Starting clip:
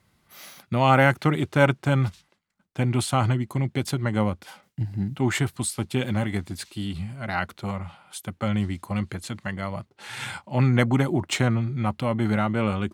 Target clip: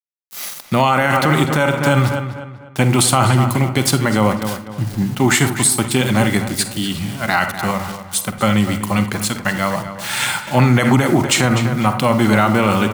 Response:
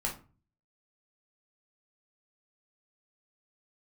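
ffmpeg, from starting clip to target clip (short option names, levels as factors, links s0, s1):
-filter_complex "[0:a]highpass=130,equalizer=f=1100:t=o:w=1.1:g=3.5,aeval=exprs='val(0)*gte(abs(val(0)),0.0075)':c=same,highshelf=f=3900:g=10,asplit=2[s0][s1];[s1]adelay=247,lowpass=f=3500:p=1,volume=0.266,asplit=2[s2][s3];[s3]adelay=247,lowpass=f=3500:p=1,volume=0.36,asplit=2[s4][s5];[s5]adelay=247,lowpass=f=3500:p=1,volume=0.36,asplit=2[s6][s7];[s7]adelay=247,lowpass=f=3500:p=1,volume=0.36[s8];[s0][s2][s4][s6][s8]amix=inputs=5:normalize=0,asplit=2[s9][s10];[1:a]atrim=start_sample=2205,adelay=46[s11];[s10][s11]afir=irnorm=-1:irlink=0,volume=0.2[s12];[s9][s12]amix=inputs=2:normalize=0,alimiter=level_in=4.22:limit=0.891:release=50:level=0:latency=1,volume=0.75"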